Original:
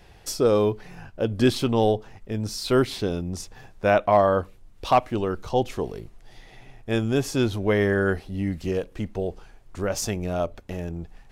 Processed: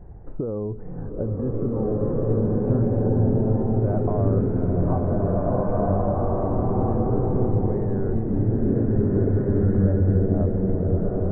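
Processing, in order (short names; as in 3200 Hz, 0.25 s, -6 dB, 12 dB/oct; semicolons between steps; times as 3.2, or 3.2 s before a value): low shelf 380 Hz +11.5 dB; limiter -11.5 dBFS, peak gain reduction 9.5 dB; compressor, threshold -24 dBFS, peak gain reduction 8.5 dB; Gaussian blur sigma 7.4 samples; bloom reverb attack 1.88 s, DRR -8 dB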